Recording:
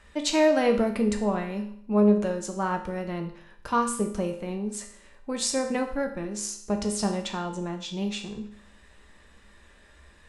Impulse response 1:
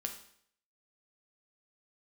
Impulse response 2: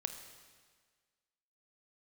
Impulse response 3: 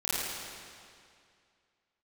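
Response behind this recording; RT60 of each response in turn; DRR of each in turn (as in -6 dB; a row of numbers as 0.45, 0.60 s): 1; 0.65, 1.6, 2.3 s; 3.0, 7.0, -10.5 dB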